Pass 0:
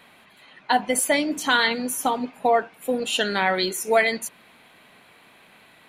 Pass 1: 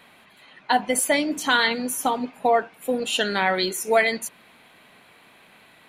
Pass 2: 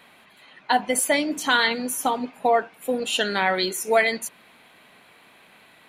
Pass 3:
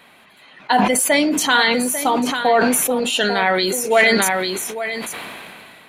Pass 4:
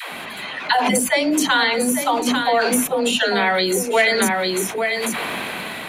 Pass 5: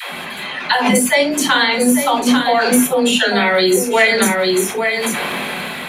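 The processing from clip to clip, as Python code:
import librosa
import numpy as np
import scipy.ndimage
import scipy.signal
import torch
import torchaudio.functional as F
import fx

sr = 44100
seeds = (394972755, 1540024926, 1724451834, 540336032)

y1 = x
y2 = fx.low_shelf(y1, sr, hz=160.0, db=-3.5)
y3 = y2 + 10.0 ** (-11.5 / 20.0) * np.pad(y2, (int(845 * sr / 1000.0), 0))[:len(y2)]
y3 = fx.sustainer(y3, sr, db_per_s=23.0)
y3 = y3 * librosa.db_to_amplitude(3.5)
y4 = fx.dispersion(y3, sr, late='lows', ms=141.0, hz=320.0)
y4 = fx.band_squash(y4, sr, depth_pct=70)
y4 = y4 * librosa.db_to_amplitude(-1.5)
y5 = fx.rev_gated(y4, sr, seeds[0], gate_ms=90, shape='falling', drr_db=2.5)
y5 = y5 * librosa.db_to_amplitude(2.0)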